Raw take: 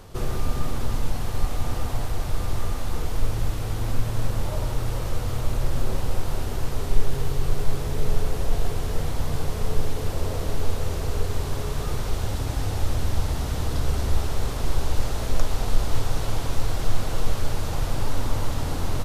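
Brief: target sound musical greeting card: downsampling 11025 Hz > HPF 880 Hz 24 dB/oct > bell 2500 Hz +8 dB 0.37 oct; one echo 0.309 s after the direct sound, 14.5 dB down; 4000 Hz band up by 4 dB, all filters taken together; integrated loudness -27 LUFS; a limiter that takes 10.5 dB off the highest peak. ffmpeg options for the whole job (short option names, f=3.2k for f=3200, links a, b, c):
-af "equalizer=f=4k:t=o:g=3.5,alimiter=limit=-15dB:level=0:latency=1,aecho=1:1:309:0.188,aresample=11025,aresample=44100,highpass=f=880:w=0.5412,highpass=f=880:w=1.3066,equalizer=f=2.5k:t=o:w=0.37:g=8,volume=10dB"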